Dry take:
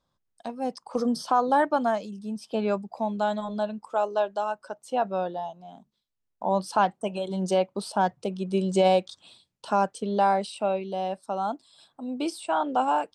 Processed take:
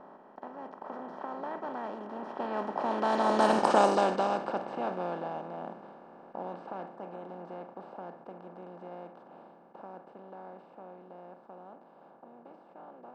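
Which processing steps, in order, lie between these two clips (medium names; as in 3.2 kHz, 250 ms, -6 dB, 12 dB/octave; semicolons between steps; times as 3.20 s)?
spectral levelling over time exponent 0.2; Doppler pass-by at 3.63 s, 19 m/s, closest 5.9 m; level-controlled noise filter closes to 1.4 kHz, open at -13 dBFS; trim -5 dB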